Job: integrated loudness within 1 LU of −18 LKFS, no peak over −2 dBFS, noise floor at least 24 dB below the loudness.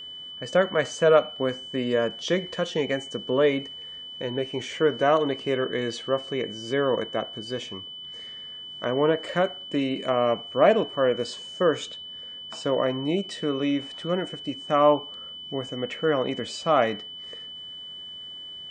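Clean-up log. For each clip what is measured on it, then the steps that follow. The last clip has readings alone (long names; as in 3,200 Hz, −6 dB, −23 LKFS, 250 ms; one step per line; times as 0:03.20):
interfering tone 3,000 Hz; level of the tone −37 dBFS; integrated loudness −25.5 LKFS; sample peak −6.0 dBFS; target loudness −18.0 LKFS
→ notch filter 3,000 Hz, Q 30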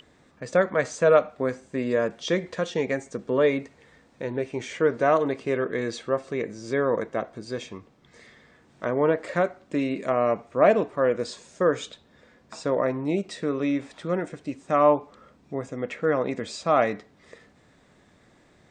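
interfering tone none found; integrated loudness −25.5 LKFS; sample peak −6.0 dBFS; target loudness −18.0 LKFS
→ level +7.5 dB
brickwall limiter −2 dBFS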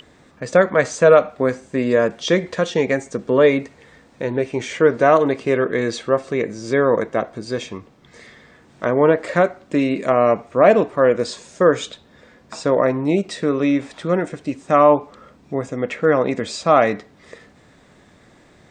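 integrated loudness −18.5 LKFS; sample peak −2.0 dBFS; background noise floor −51 dBFS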